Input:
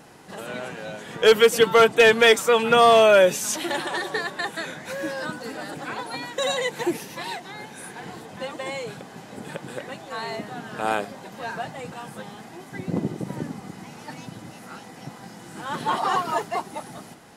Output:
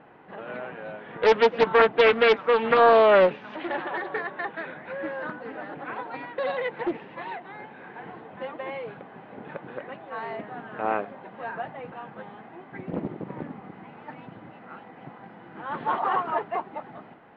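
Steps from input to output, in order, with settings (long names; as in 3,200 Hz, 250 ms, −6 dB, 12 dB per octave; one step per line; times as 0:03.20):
Bessel low-pass filter 1,700 Hz, order 8
low-shelf EQ 240 Hz −9.5 dB
highs frequency-modulated by the lows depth 0.47 ms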